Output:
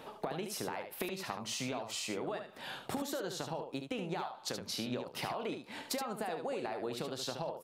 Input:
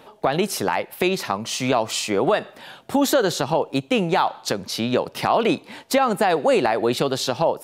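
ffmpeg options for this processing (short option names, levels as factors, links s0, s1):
-filter_complex "[0:a]acompressor=threshold=0.0224:ratio=10,asplit=2[s0][s1];[s1]aecho=0:1:32|73:0.158|0.447[s2];[s0][s2]amix=inputs=2:normalize=0,volume=0.708"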